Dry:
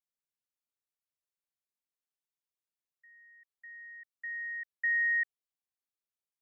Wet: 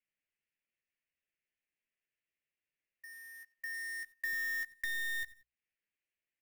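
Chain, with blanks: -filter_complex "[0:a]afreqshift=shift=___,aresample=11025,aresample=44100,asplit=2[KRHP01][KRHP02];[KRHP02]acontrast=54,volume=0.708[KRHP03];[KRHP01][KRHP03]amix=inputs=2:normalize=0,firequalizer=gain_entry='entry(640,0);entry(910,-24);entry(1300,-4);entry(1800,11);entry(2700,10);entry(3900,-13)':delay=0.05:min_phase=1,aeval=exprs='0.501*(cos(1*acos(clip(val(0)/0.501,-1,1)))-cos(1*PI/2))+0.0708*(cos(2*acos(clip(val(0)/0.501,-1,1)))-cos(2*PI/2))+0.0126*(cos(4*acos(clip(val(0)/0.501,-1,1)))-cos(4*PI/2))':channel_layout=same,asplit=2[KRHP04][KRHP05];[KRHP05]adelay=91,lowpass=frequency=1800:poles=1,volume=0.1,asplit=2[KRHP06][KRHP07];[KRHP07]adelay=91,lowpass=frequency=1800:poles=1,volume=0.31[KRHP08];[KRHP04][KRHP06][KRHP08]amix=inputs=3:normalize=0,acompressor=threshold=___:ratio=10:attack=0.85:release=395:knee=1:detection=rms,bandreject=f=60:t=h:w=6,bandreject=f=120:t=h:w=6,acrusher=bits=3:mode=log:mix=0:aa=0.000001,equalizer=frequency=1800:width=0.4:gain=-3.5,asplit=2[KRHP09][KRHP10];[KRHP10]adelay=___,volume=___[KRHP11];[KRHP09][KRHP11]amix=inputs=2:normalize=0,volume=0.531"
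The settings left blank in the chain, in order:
-40, 0.0794, 14, 0.447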